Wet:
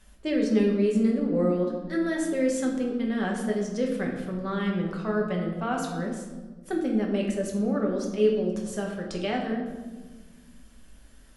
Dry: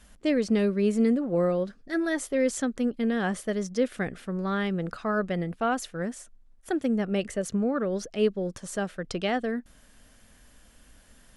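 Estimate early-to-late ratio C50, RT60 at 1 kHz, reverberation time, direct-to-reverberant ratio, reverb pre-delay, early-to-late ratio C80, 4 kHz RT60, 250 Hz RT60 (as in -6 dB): 4.5 dB, 1.2 s, 1.3 s, -1.0 dB, 5 ms, 6.5 dB, 0.90 s, 2.3 s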